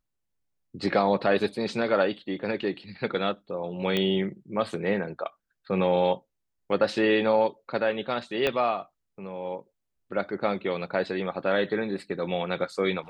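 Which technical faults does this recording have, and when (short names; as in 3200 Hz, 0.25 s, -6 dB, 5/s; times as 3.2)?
3.97 pop -13 dBFS
8.47 pop -12 dBFS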